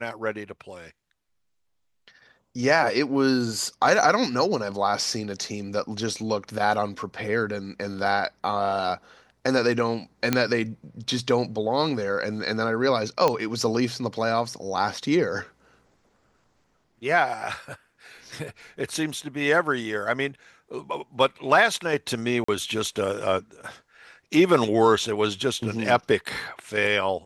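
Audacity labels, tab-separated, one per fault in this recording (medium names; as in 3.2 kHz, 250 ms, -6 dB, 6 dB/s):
10.330000	10.330000	pop -6 dBFS
13.280000	13.280000	pop -9 dBFS
22.440000	22.480000	dropout 44 ms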